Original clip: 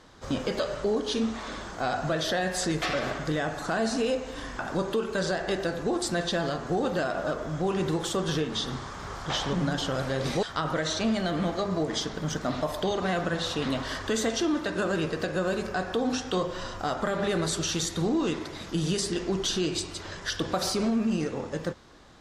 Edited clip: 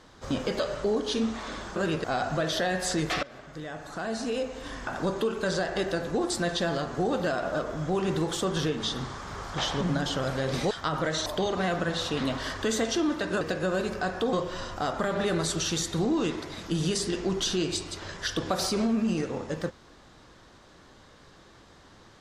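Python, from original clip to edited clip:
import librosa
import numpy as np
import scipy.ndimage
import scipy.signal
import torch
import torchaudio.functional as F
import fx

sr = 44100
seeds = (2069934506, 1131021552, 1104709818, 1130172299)

y = fx.edit(x, sr, fx.fade_in_from(start_s=2.95, length_s=1.7, floor_db=-20.5),
    fx.cut(start_s=10.98, length_s=1.73),
    fx.move(start_s=14.86, length_s=0.28, to_s=1.76),
    fx.cut(start_s=16.06, length_s=0.3), tone=tone)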